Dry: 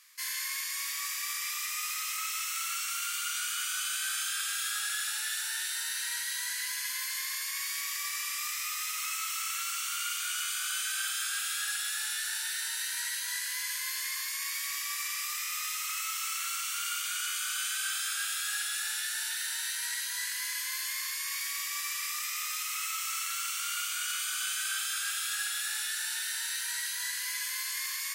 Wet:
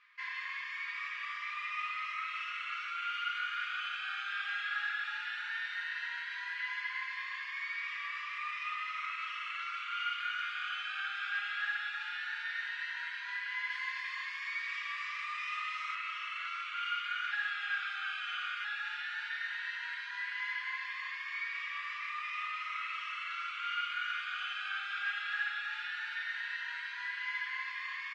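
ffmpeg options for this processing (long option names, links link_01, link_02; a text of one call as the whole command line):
ffmpeg -i in.wav -filter_complex "[0:a]asettb=1/sr,asplit=3[link_01][link_02][link_03];[link_01]atrim=end=13.704[link_04];[link_02]atrim=start=13.7:end=15.95,asetpts=PTS-STARTPTS,afade=type=in:duration=0.004:curve=qsin,afade=type=out:start_time=2.246:duration=0.004:curve=qsin,bass=frequency=250:gain=8,treble=frequency=4000:gain=6[link_05];[link_03]atrim=start=15.946[link_06];[link_04][link_05]acrossfade=duration=0.004:curve1=hsin:curve2=qsin[link_07];[link_07][link_06]acrossfade=duration=0.004:curve1=qsin:curve2=hsin,asplit=3[link_08][link_09][link_10];[link_08]atrim=end=17.312[link_11];[link_09]atrim=start=17.308:end=18.642,asetpts=PTS-STARTPTS,areverse[link_12];[link_10]atrim=start=18.638[link_13];[link_11][link_12]acrossfade=duration=0.004:curve1=hsin:curve2=hsin[link_14];[link_14][link_13]acrossfade=duration=0.004:curve1=hsin:curve2=hsin,lowpass=frequency=2600:width=0.5412,lowpass=frequency=2600:width=1.3066,aecho=1:1:4.9:0.79" out.wav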